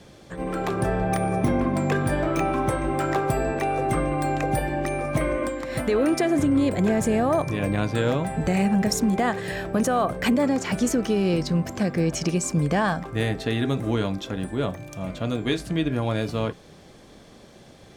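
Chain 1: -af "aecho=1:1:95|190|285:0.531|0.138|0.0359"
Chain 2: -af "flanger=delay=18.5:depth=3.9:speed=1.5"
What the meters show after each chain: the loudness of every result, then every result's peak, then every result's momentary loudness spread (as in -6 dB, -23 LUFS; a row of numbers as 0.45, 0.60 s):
-23.0, -27.5 LUFS; -9.0, -12.5 dBFS; 7, 7 LU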